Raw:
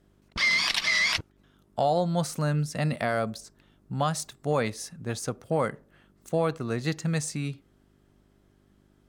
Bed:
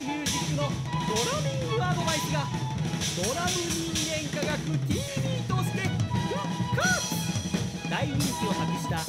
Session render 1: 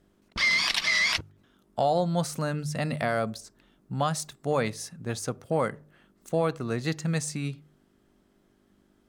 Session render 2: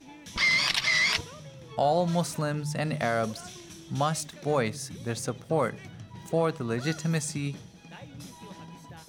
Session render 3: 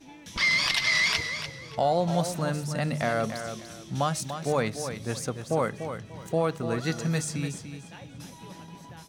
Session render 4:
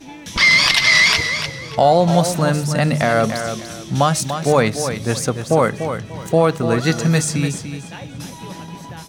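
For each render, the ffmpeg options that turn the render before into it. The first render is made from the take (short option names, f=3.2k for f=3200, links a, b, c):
-af "bandreject=f=50:t=h:w=4,bandreject=f=100:t=h:w=4,bandreject=f=150:t=h:w=4"
-filter_complex "[1:a]volume=-17dB[a];[0:a][a]amix=inputs=2:normalize=0"
-af "aecho=1:1:293|586|879:0.355|0.0852|0.0204"
-af "volume=11.5dB,alimiter=limit=-3dB:level=0:latency=1"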